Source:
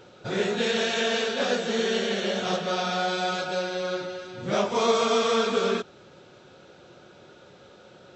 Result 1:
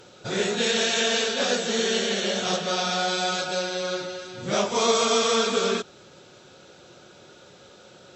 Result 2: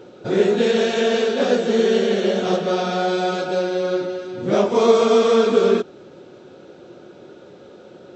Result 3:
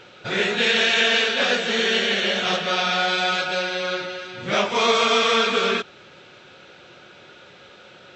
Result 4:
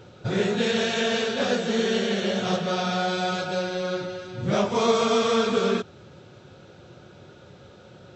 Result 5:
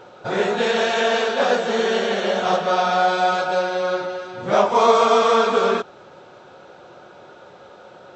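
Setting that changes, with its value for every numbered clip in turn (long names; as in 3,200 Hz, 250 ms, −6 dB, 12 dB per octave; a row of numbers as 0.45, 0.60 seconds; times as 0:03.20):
parametric band, centre frequency: 9,600, 330, 2,400, 95, 880 Hertz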